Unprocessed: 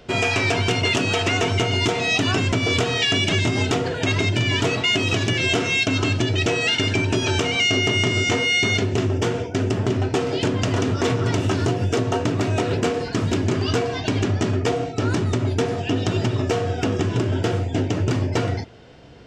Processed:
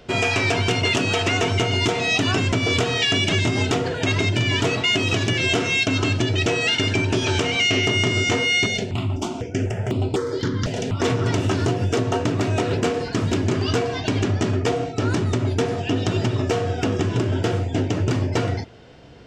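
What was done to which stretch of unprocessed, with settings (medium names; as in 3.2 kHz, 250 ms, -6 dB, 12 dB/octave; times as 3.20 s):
7.08–7.86 s: loudspeaker Doppler distortion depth 0.1 ms
8.66–11.00 s: stepped phaser 4 Hz 310–6000 Hz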